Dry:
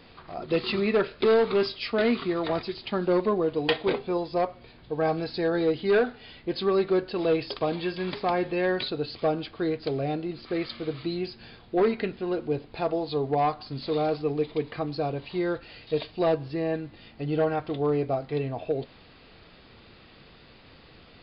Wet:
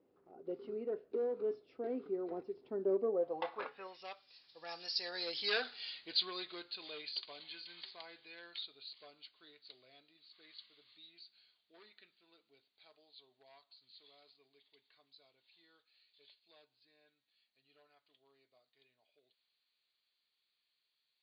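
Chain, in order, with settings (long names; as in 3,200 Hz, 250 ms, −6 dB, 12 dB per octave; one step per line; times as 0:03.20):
source passing by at 0:05.69, 25 m/s, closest 9.8 metres
band-pass filter sweep 380 Hz → 4,800 Hz, 0:03.02–0:04.26
level +10.5 dB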